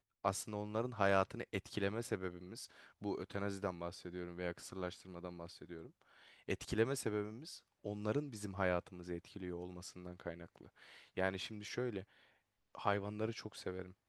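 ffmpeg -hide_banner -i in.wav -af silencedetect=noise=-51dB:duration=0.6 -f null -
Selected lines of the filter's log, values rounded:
silence_start: 12.03
silence_end: 12.75 | silence_duration: 0.72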